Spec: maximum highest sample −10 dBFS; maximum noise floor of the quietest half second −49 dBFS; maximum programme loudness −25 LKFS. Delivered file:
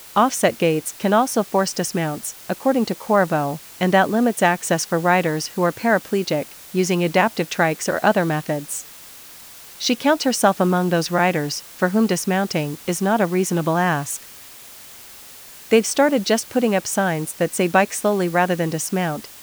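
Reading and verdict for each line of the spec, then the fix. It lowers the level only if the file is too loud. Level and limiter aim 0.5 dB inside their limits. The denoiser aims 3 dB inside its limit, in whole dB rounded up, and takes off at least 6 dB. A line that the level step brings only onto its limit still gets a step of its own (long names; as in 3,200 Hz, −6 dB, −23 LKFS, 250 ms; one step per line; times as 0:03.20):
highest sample −3.0 dBFS: out of spec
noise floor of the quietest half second −41 dBFS: out of spec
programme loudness −20.0 LKFS: out of spec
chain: broadband denoise 6 dB, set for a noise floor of −41 dBFS
level −5.5 dB
brickwall limiter −10.5 dBFS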